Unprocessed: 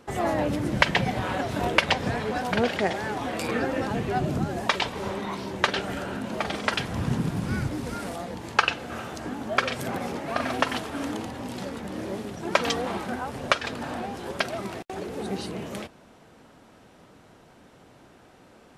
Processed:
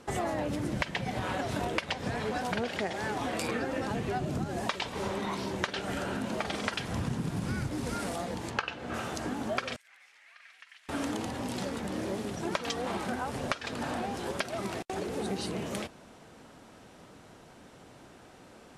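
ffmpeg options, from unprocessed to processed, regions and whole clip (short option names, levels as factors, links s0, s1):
-filter_complex "[0:a]asettb=1/sr,asplit=3[s0][s1][s2];[s0]atrim=end=8.504[s3];[s1]atrim=start=8.5:end=8.94,asetpts=PTS-STARTPTS,afade=t=in:d=0.004:c=qsin,afade=t=out:st=0.436:d=0.004:c=qsin,lowpass=f=2800:p=1,asplit=2[s4][s5];[s5]adelay=16,volume=0.299[s6];[s4][s6]amix=inputs=2:normalize=0,atrim=end_sample=19404[s7];[s2]atrim=start=8.936[s8];[s3][s7]acrossfade=d=0.004:c1=hsin:c2=qsin[s9];[s9][s8]acrossfade=d=0.004:c1=qsin:c2=hsin,asettb=1/sr,asplit=3[s10][s11][s12];[s10]atrim=end=9.764[s13];[s11]atrim=start=9.76:end=10.89,asetpts=PTS-STARTPTS,afade=t=in:d=0.004:c=qsin,afade=t=out:st=1.126:d=0.004:c=qsin,aderivative,acompressor=threshold=0.00447:ratio=2.5:attack=3.2:release=140:knee=1:detection=peak,bandpass=f=2000:t=q:w=2.7[s14];[s12]atrim=start=10.886[s15];[s13][s14]acrossfade=d=0.004:c1=hsin:c2=qsin[s16];[s16][s15]acrossfade=d=0.004:c1=qsin:c2=hsin,lowpass=10000,highshelf=f=7400:g=8.5,acompressor=threshold=0.0355:ratio=6"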